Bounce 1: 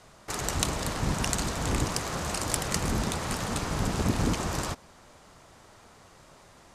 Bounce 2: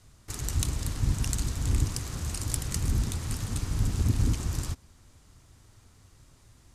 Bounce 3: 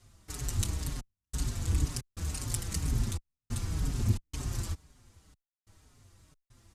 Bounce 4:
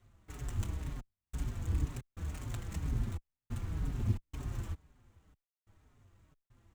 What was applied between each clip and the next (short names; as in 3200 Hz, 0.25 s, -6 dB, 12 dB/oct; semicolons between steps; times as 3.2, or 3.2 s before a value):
EQ curve 110 Hz 0 dB, 180 Hz -12 dB, 270 Hz -9 dB, 600 Hz -21 dB, 12000 Hz -6 dB; gain +5.5 dB
step gate "xxxxxx..xxxx." 90 bpm -60 dB; endless flanger 5.2 ms -2 Hz
median filter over 9 samples; gain -4 dB